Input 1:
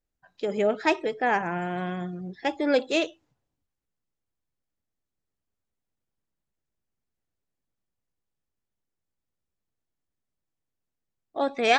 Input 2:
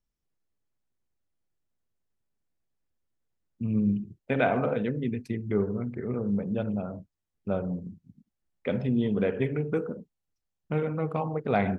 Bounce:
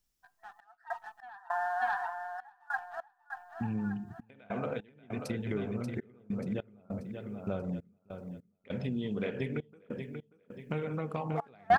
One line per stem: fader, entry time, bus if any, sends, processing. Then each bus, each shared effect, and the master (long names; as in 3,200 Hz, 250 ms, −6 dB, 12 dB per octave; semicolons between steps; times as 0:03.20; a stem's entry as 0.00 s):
−4.5 dB, 0.00 s, no send, echo send −7.5 dB, brick-wall band-pass 660–1,900 Hz; comb filter 6.8 ms, depth 47%; leveller curve on the samples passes 1
+0.5 dB, 0.00 s, no send, echo send −7.5 dB, high-shelf EQ 2,600 Hz +11.5 dB; downward compressor 6 to 1, threshold −32 dBFS, peak gain reduction 13.5 dB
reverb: not used
echo: repeating echo 585 ms, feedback 45%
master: gate pattern "xxxx..xx..xx" 100 BPM −24 dB